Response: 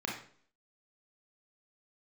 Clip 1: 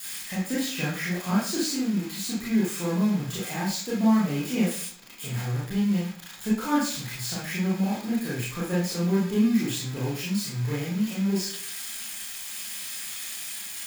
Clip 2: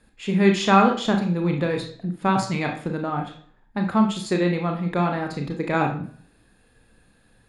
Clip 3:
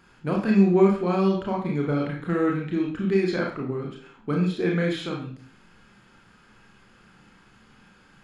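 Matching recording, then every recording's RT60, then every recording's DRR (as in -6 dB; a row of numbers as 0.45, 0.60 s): 3; 0.50, 0.50, 0.50 s; -8.0, 2.5, -1.5 dB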